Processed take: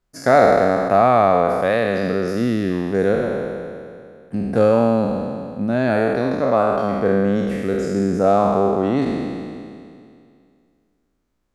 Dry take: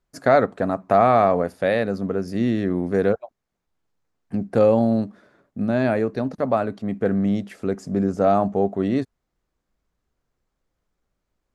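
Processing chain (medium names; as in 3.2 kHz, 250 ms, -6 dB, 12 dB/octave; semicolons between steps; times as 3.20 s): spectral sustain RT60 2.33 s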